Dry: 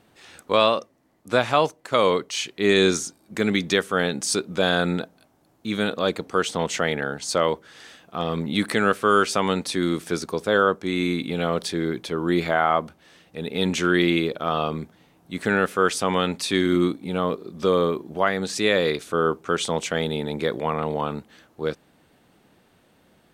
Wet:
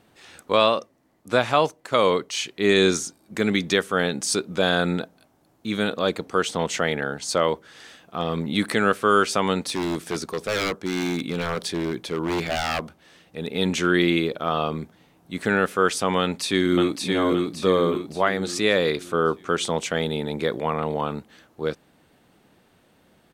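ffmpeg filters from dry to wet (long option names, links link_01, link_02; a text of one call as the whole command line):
ffmpeg -i in.wav -filter_complex "[0:a]asettb=1/sr,asplit=3[link_01][link_02][link_03];[link_01]atrim=end=9.674[link_04];[link_02]atrim=start=9.67:end=13.48,asetpts=PTS-STARTPTS,afade=type=in:duration=0.004:curve=qsin,afade=type=out:start_time=3.806:duration=0.004:curve=qsin,aeval=exprs='0.119*(abs(mod(val(0)/0.119+3,4)-2)-1)':channel_layout=same[link_05];[link_03]atrim=start=13.476[link_06];[link_04][link_05]acrossfade=duration=0.004:curve1=hsin:curve2=qsin[link_07];[link_07][link_06]acrossfade=duration=0.004:curve1=qsin:curve2=hsin,asplit=2[link_08][link_09];[link_09]afade=type=in:start_time=16.2:duration=0.01,afade=type=out:start_time=17.03:duration=0.01,aecho=0:1:570|1140|1710|2280|2850|3420:0.707946|0.318576|0.143359|0.0645116|0.0290302|0.0130636[link_10];[link_08][link_10]amix=inputs=2:normalize=0" out.wav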